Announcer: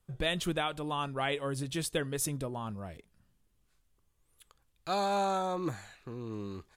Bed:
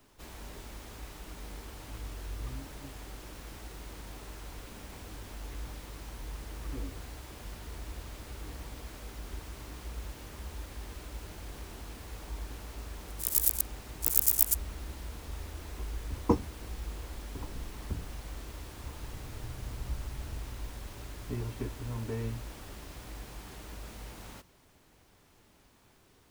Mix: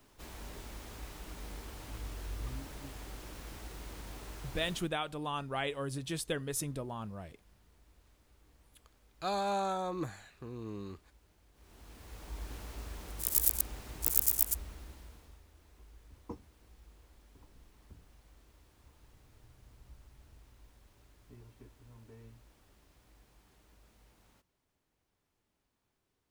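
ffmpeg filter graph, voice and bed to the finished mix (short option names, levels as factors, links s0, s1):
-filter_complex "[0:a]adelay=4350,volume=0.708[s0];[1:a]volume=10,afade=t=out:st=4.7:d=0.2:silence=0.0841395,afade=t=in:st=11.54:d=1.01:silence=0.0891251,afade=t=out:st=13.98:d=1.44:silence=0.133352[s1];[s0][s1]amix=inputs=2:normalize=0"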